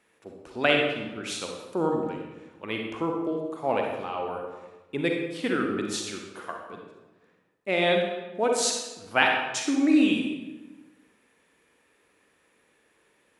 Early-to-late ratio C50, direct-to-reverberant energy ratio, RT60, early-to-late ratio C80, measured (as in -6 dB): 2.0 dB, 1.0 dB, 1.1 s, 5.0 dB